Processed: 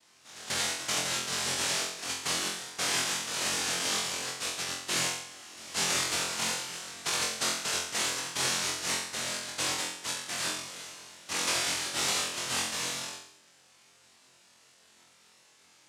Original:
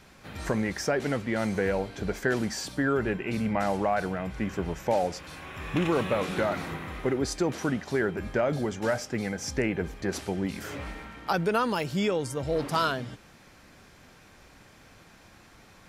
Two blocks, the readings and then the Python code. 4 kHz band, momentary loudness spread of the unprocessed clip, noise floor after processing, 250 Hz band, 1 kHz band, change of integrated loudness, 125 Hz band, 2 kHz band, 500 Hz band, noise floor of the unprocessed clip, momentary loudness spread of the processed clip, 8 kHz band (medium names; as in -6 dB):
+10.5 dB, 9 LU, -61 dBFS, -15.0 dB, -5.5 dB, -0.5 dB, -14.5 dB, 0.0 dB, -13.5 dB, -55 dBFS, 8 LU, +12.5 dB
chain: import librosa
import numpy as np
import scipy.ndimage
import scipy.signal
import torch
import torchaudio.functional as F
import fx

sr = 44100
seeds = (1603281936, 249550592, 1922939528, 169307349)

y = fx.env_flanger(x, sr, rest_ms=2.4, full_db=-27.0)
y = fx.noise_vocoder(y, sr, seeds[0], bands=1)
y = fx.room_flutter(y, sr, wall_m=3.9, rt60_s=0.63)
y = y * librosa.db_to_amplitude(-6.5)